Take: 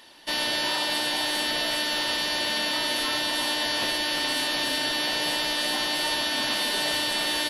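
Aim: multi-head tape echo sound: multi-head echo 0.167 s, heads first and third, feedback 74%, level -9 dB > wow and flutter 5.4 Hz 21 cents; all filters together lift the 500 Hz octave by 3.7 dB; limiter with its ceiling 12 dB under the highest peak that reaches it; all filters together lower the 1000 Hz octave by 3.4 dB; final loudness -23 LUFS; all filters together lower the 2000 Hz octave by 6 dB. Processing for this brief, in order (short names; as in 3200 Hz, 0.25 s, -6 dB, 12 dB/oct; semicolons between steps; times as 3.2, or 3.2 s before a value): bell 500 Hz +7 dB; bell 1000 Hz -5 dB; bell 2000 Hz -6.5 dB; limiter -26 dBFS; multi-head echo 0.167 s, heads first and third, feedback 74%, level -9 dB; wow and flutter 5.4 Hz 21 cents; gain +9.5 dB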